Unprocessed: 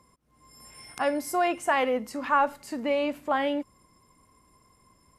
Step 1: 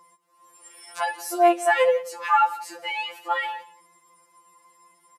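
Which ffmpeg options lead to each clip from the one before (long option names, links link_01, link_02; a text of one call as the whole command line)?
ffmpeg -i in.wav -af "highpass=490,aecho=1:1:179:0.112,afftfilt=real='re*2.83*eq(mod(b,8),0)':imag='im*2.83*eq(mod(b,8),0)':win_size=2048:overlap=0.75,volume=7dB" out.wav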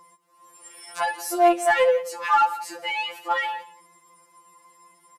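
ffmpeg -i in.wav -filter_complex "[0:a]lowshelf=frequency=160:gain=5.5,asplit=2[link_01][link_02];[link_02]asoftclip=type=tanh:threshold=-24.5dB,volume=-5dB[link_03];[link_01][link_03]amix=inputs=2:normalize=0,volume=-1.5dB" out.wav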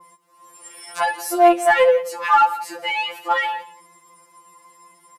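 ffmpeg -i in.wav -af "adynamicequalizer=threshold=0.00501:dfrequency=6500:dqfactor=0.89:tfrequency=6500:tqfactor=0.89:attack=5:release=100:ratio=0.375:range=2.5:mode=cutabove:tftype=bell,volume=4.5dB" out.wav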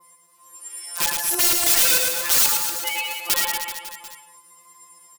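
ffmpeg -i in.wav -af "aeval=exprs='(mod(5.62*val(0)+1,2)-1)/5.62':channel_layout=same,aecho=1:1:110|236.5|382|549.3|741.7:0.631|0.398|0.251|0.158|0.1,crystalizer=i=3.5:c=0,volume=-9dB" out.wav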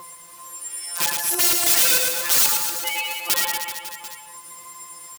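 ffmpeg -i in.wav -filter_complex "[0:a]highpass=57,asplit=2[link_01][link_02];[link_02]acompressor=mode=upward:threshold=-21dB:ratio=2.5,volume=-2dB[link_03];[link_01][link_03]amix=inputs=2:normalize=0,acrusher=bits=6:mix=0:aa=0.000001,volume=-5dB" out.wav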